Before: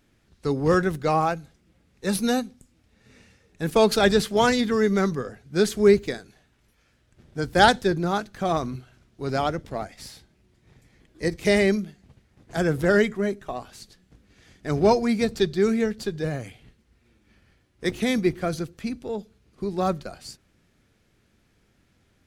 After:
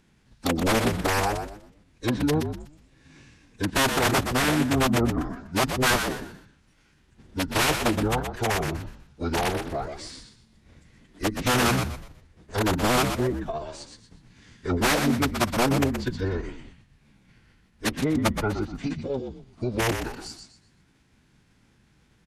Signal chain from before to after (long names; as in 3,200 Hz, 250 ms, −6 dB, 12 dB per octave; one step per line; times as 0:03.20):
treble cut that deepens with the level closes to 910 Hz, closed at −18 dBFS
dynamic equaliser 2,500 Hz, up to −4 dB, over −51 dBFS, Q 3.7
in parallel at −1 dB: downward compressor 16 to 1, threshold −31 dBFS, peak gain reduction 20.5 dB
on the sum: wrap-around overflow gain 13 dB
on a send: echo with shifted repeats 123 ms, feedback 31%, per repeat −85 Hz, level −7 dB
on the sum: phase-vocoder pitch shift with formants kept −8.5 semitones
level −2 dB